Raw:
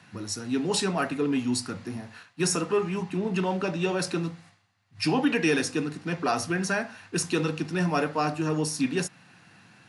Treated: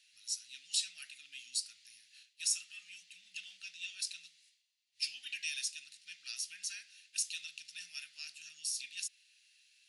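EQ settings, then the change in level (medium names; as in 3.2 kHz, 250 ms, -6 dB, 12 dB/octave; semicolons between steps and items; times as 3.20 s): inverse Chebyshev high-pass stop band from 1.1 kHz, stop band 50 dB; -4.0 dB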